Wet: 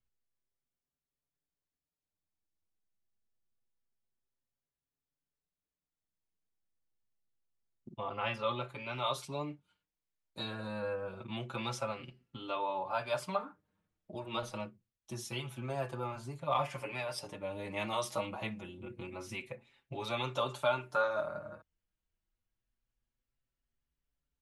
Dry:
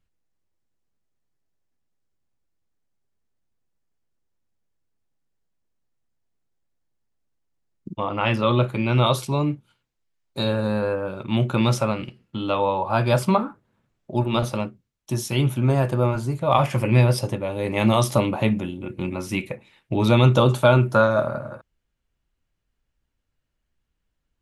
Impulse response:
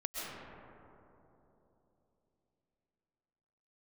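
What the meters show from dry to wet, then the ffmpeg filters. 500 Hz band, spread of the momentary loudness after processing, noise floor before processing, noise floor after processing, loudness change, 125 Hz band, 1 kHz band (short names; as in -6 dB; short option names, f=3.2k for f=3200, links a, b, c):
-14.5 dB, 13 LU, -77 dBFS, under -85 dBFS, -16.0 dB, -24.0 dB, -12.0 dB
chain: -filter_complex "[0:a]lowpass=10k,acrossover=split=510|4200[a][b][c];[a]acompressor=threshold=-32dB:ratio=6[d];[d][b][c]amix=inputs=3:normalize=0,asplit=2[e][f];[f]adelay=5.6,afreqshift=0.26[g];[e][g]amix=inputs=2:normalize=1,volume=-8.5dB"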